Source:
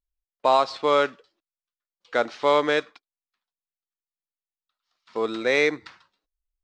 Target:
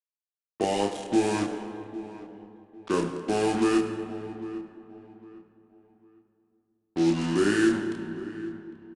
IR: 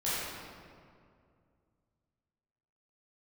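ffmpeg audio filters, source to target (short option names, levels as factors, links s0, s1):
-filter_complex "[0:a]lowshelf=f=550:t=q:w=1.5:g=6.5,acrossover=split=230[s0][s1];[s1]acompressor=threshold=0.0794:ratio=2[s2];[s0][s2]amix=inputs=2:normalize=0,acrusher=bits=4:mix=0:aa=0.5,asplit=2[s3][s4];[s4]adelay=22,volume=0.668[s5];[s3][s5]amix=inputs=2:normalize=0,asplit=2[s6][s7];[1:a]atrim=start_sample=2205[s8];[s7][s8]afir=irnorm=-1:irlink=0,volume=0.224[s9];[s6][s9]amix=inputs=2:normalize=0,asetrate=32667,aresample=44100,asplit=2[s10][s11];[s11]adelay=804,lowpass=f=2400:p=1,volume=0.141,asplit=2[s12][s13];[s13]adelay=804,lowpass=f=2400:p=1,volume=0.31,asplit=2[s14][s15];[s15]adelay=804,lowpass=f=2400:p=1,volume=0.31[s16];[s10][s12][s14][s16]amix=inputs=4:normalize=0,aresample=22050,aresample=44100,adynamicequalizer=threshold=0.00631:dfrequency=5000:dqfactor=0.7:tfrequency=5000:tqfactor=0.7:attack=5:release=100:ratio=0.375:range=3:mode=boostabove:tftype=highshelf,volume=0.501"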